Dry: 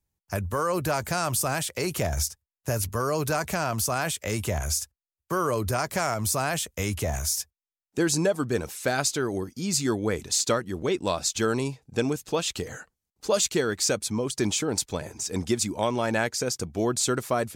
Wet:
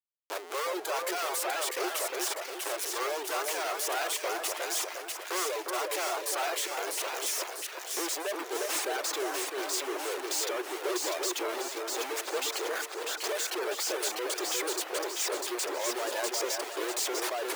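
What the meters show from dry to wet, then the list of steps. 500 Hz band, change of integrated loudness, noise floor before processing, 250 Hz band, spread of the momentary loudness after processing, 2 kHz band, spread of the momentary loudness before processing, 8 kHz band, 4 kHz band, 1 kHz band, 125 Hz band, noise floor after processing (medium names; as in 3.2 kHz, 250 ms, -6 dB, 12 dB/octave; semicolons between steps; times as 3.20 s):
-5.5 dB, -4.5 dB, under -85 dBFS, -12.0 dB, 4 LU, -2.5 dB, 6 LU, -4.0 dB, -1.5 dB, -3.5 dB, under -40 dB, -42 dBFS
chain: Schmitt trigger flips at -39.5 dBFS; reverb removal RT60 1.1 s; elliptic high-pass 360 Hz, stop band 50 dB; on a send: two-band feedback delay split 1.7 kHz, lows 355 ms, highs 647 ms, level -3 dB; on the sum: trim -2.5 dB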